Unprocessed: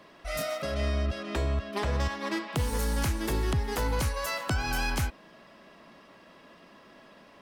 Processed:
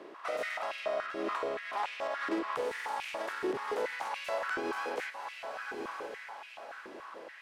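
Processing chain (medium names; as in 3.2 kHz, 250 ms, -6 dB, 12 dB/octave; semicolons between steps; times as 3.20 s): spectral contrast reduction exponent 0.55; peak limiter -23 dBFS, peak gain reduction 10.5 dB; distance through air 86 m; echo that smears into a reverb 1019 ms, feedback 42%, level -11 dB; compression, threshold -36 dBFS, peak gain reduction 7.5 dB; peaking EQ 5.4 kHz -11.5 dB 2.5 oct; buffer glitch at 0.69/2.75 s, samples 2048, times 2; step-sequenced high-pass 7 Hz 360–2500 Hz; trim +4 dB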